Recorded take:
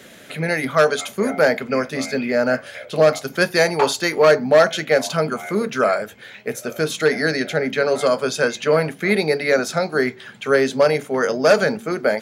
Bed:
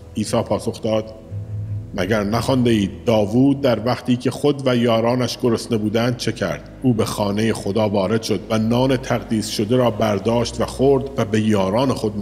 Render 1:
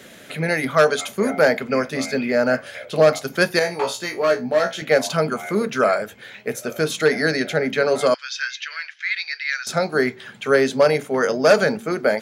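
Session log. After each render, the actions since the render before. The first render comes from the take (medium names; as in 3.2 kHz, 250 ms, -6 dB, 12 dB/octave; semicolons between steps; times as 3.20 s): 3.59–4.82 s: feedback comb 61 Hz, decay 0.2 s, mix 100%; 8.14–9.67 s: Chebyshev band-pass 1.6–5.7 kHz, order 3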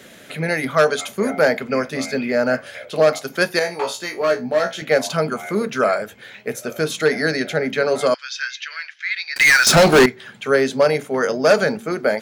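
2.89–4.21 s: high-pass 190 Hz 6 dB/octave; 9.36–10.06 s: waveshaping leveller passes 5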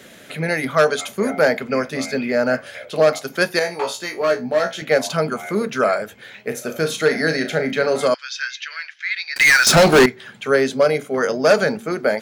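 6.48–8.08 s: flutter echo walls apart 6.3 m, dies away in 0.24 s; 10.74–11.18 s: comb of notches 900 Hz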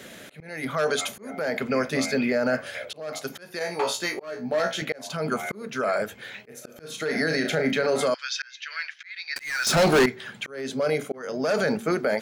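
peak limiter -14.5 dBFS, peak gain reduction 10.5 dB; slow attack 443 ms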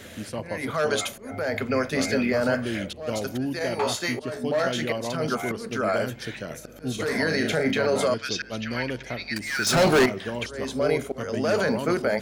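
add bed -14 dB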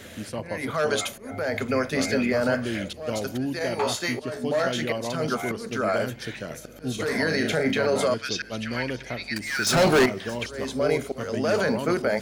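feedback echo behind a high-pass 625 ms, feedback 68%, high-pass 3.9 kHz, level -20 dB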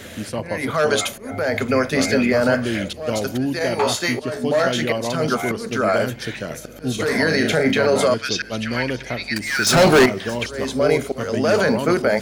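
trim +6 dB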